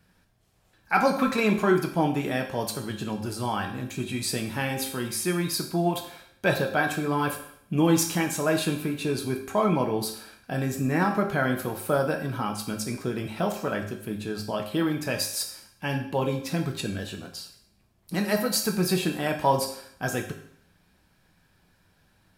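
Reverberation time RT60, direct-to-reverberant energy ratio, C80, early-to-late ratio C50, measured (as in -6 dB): 0.65 s, 3.0 dB, 11.5 dB, 8.5 dB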